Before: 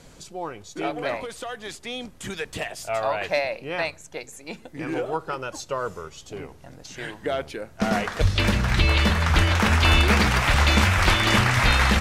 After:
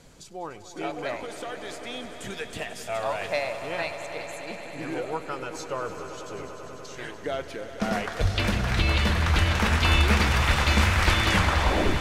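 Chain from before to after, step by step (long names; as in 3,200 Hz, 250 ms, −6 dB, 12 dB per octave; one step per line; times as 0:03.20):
turntable brake at the end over 0.70 s
echo that builds up and dies away 98 ms, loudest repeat 5, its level −14.5 dB
level −4 dB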